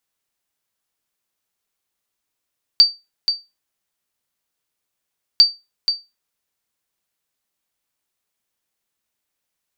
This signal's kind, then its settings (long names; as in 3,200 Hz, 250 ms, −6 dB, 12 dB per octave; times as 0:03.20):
ping with an echo 4,630 Hz, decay 0.23 s, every 2.60 s, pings 2, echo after 0.48 s, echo −8.5 dB −2 dBFS